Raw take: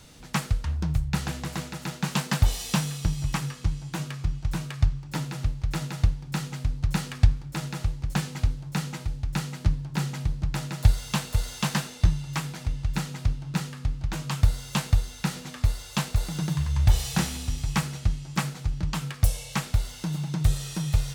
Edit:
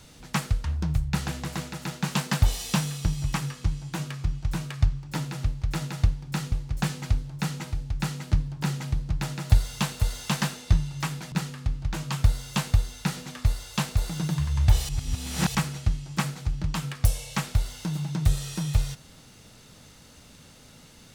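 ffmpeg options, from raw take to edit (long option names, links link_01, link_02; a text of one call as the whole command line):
ffmpeg -i in.wav -filter_complex "[0:a]asplit=5[link_01][link_02][link_03][link_04][link_05];[link_01]atrim=end=6.522[link_06];[link_02]atrim=start=7.848:end=12.652[link_07];[link_03]atrim=start=13.508:end=17.082[link_08];[link_04]atrim=start=17.078:end=17.742,asetpts=PTS-STARTPTS,areverse[link_09];[link_05]atrim=start=17.738[link_10];[link_06][link_07]acrossfade=duration=0.004:curve1=hsin:curve2=hsin[link_11];[link_11][link_08]acrossfade=duration=0.004:curve1=hsin:curve2=hsin[link_12];[link_12][link_09]acrossfade=duration=0.004:curve1=hsin:curve2=hsin[link_13];[link_13][link_10]acrossfade=duration=0.004:curve1=hsin:curve2=hsin" out.wav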